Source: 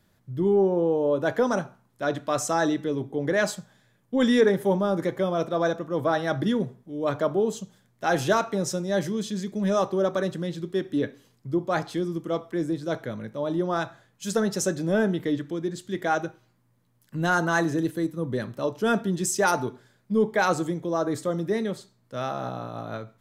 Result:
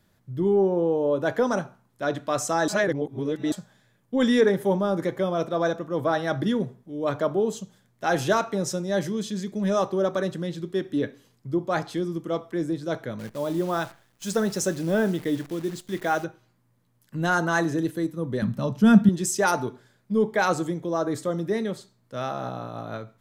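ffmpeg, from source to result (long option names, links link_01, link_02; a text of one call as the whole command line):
ffmpeg -i in.wav -filter_complex "[0:a]asettb=1/sr,asplit=3[link_01][link_02][link_03];[link_01]atrim=end=13.194[link_04];[link_02]atrim=start=13.19:end=16.24,asetpts=PTS-STARTPTS,afade=type=in:duration=0.004:curve=qsin,afade=type=out:start_time=3.046:duration=0.004:curve=qsin,acrusher=bits=8:dc=4:mix=0:aa=0.000001[link_05];[link_03]atrim=start=16.236[link_06];[link_04][link_05]acrossfade=duration=0.004:curve1=hsin:curve2=qsin[link_07];[link_07][link_06]acrossfade=duration=0.004:curve1=qsin:curve2=hsin,asettb=1/sr,asplit=3[link_08][link_09][link_10];[link_08]atrim=end=18.424[link_11];[link_09]atrim=start=18.42:end=19.09,asetpts=PTS-STARTPTS,afade=type=in:duration=0.004:curve=qsin,afade=type=out:start_time=0.666:duration=0.004:curve=qsin,lowshelf=frequency=270:width_type=q:width=3:gain=8[link_12];[link_10]atrim=start=19.086[link_13];[link_11][link_12]acrossfade=duration=0.004:curve1=hsin:curve2=qsin[link_14];[link_14][link_13]acrossfade=duration=0.004:curve1=qsin:curve2=hsin,asplit=3[link_15][link_16][link_17];[link_15]atrim=end=2.682[link_18];[link_16]atrim=start=2.678:end=3.522,asetpts=PTS-STARTPTS,areverse[link_19];[link_17]atrim=start=3.518[link_20];[link_18][link_19]acrossfade=duration=0.004:curve1=hsin:curve2=hsin[link_21];[link_21][link_20]acrossfade=duration=0.004:curve1=hsin:curve2=hsin" out.wav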